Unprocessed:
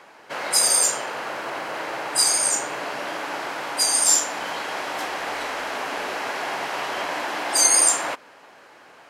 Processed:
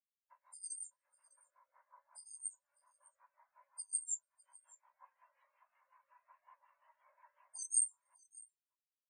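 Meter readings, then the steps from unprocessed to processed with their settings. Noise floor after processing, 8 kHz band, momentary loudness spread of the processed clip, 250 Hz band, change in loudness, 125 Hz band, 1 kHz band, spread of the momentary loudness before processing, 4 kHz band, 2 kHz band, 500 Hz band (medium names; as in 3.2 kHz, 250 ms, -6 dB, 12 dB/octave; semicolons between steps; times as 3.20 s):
under -85 dBFS, -21.5 dB, 24 LU, under -40 dB, -17.5 dB, under -40 dB, -39.5 dB, 14 LU, under -40 dB, under -40 dB, under -40 dB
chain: coarse spectral quantiser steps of 30 dB; wow and flutter 16 cents; treble shelf 6.9 kHz +10 dB; compression 2.5:1, threshold -37 dBFS, peak gain reduction 18.5 dB; rotary cabinet horn 5.5 Hz; delay 287 ms -13.5 dB; dynamic bell 990 Hz, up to +6 dB, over -52 dBFS, Q 4.5; elliptic high-pass 530 Hz; delay 604 ms -6 dB; spectral contrast expander 4:1; trim -1 dB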